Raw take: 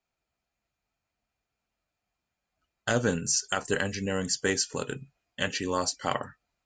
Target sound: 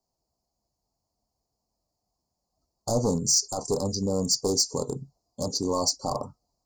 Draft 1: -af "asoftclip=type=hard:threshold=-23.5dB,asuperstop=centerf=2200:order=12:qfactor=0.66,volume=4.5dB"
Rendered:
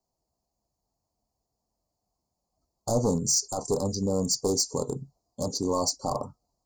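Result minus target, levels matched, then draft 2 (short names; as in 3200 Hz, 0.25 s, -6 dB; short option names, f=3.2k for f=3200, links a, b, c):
4000 Hz band -2.5 dB
-af "asoftclip=type=hard:threshold=-23.5dB,asuperstop=centerf=2200:order=12:qfactor=0.66,equalizer=f=5k:t=o:w=0.53:g=4.5,volume=4.5dB"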